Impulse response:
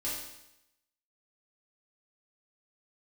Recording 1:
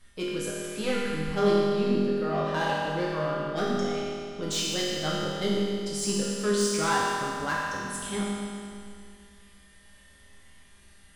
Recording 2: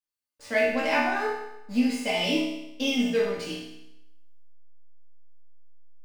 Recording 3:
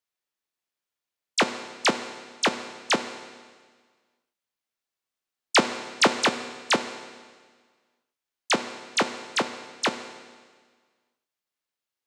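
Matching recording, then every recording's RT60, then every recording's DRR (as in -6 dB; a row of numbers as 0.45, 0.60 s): 2; 2.3, 0.85, 1.6 s; -7.0, -8.5, 8.0 dB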